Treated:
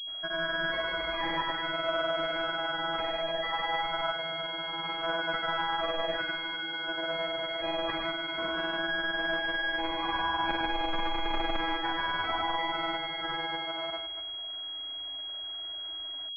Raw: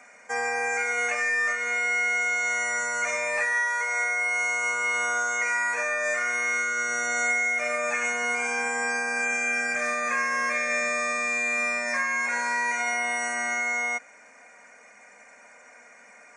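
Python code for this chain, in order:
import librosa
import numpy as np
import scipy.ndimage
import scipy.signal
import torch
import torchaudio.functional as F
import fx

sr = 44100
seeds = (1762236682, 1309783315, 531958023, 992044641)

p1 = fx.pitch_keep_formants(x, sr, semitones=5.5)
p2 = p1 + fx.echo_thinned(p1, sr, ms=124, feedback_pct=34, hz=420.0, wet_db=-7, dry=0)
p3 = fx.granulator(p2, sr, seeds[0], grain_ms=100.0, per_s=20.0, spray_ms=100.0, spread_st=0)
y = fx.pwm(p3, sr, carrier_hz=3300.0)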